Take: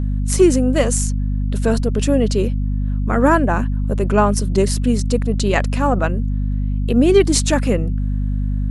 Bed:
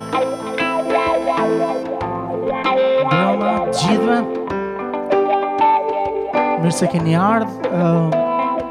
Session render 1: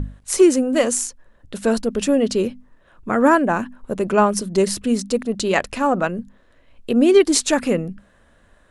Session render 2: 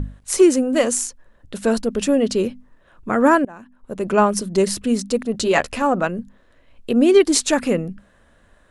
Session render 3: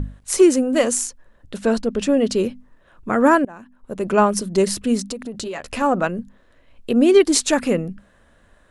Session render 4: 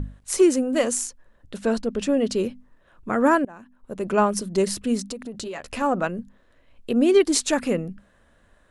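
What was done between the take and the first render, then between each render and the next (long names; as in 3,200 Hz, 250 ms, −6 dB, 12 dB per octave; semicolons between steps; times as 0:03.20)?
mains-hum notches 50/100/150/200/250 Hz
0:03.45–0:04.12: fade in quadratic, from −20.5 dB; 0:05.33–0:05.82: double-tracking delay 13 ms −5 dB
0:01.56–0:02.17: high-frequency loss of the air 50 metres; 0:05.11–0:05.71: downward compressor 16 to 1, threshold −25 dBFS
level −4 dB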